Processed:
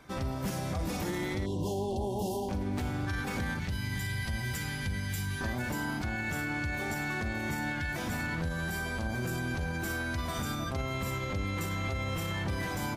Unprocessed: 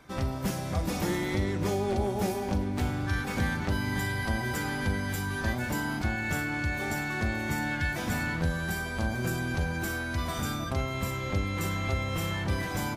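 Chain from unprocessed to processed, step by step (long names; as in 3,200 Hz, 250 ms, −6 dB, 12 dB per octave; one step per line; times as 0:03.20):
0:01.46–0:02.49: time-frequency box erased 1,100–2,700 Hz
0:03.59–0:05.41: flat-topped bell 580 Hz −10 dB 2.9 octaves
brickwall limiter −25 dBFS, peak gain reduction 8 dB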